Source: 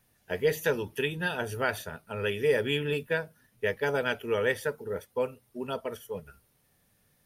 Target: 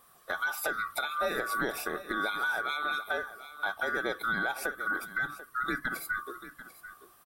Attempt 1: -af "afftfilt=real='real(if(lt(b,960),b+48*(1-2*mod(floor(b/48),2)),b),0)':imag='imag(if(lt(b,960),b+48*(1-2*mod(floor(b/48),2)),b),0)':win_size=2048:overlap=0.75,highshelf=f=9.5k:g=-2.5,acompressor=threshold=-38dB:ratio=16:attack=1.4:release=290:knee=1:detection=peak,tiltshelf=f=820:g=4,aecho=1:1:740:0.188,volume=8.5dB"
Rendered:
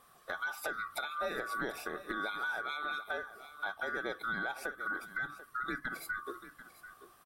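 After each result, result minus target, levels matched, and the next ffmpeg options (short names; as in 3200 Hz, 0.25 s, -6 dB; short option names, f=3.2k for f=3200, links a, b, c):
compressor: peak gain reduction +5.5 dB; 8000 Hz band -2.5 dB
-af "afftfilt=real='real(if(lt(b,960),b+48*(1-2*mod(floor(b/48),2)),b),0)':imag='imag(if(lt(b,960),b+48*(1-2*mod(floor(b/48),2)),b),0)':win_size=2048:overlap=0.75,highshelf=f=9.5k:g=-2.5,acompressor=threshold=-32dB:ratio=16:attack=1.4:release=290:knee=1:detection=peak,tiltshelf=f=820:g=4,aecho=1:1:740:0.188,volume=8.5dB"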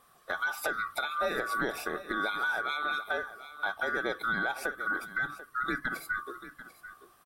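8000 Hz band -3.5 dB
-af "afftfilt=real='real(if(lt(b,960),b+48*(1-2*mod(floor(b/48),2)),b),0)':imag='imag(if(lt(b,960),b+48*(1-2*mod(floor(b/48),2)),b),0)':win_size=2048:overlap=0.75,highshelf=f=9.5k:g=7,acompressor=threshold=-32dB:ratio=16:attack=1.4:release=290:knee=1:detection=peak,tiltshelf=f=820:g=4,aecho=1:1:740:0.188,volume=8.5dB"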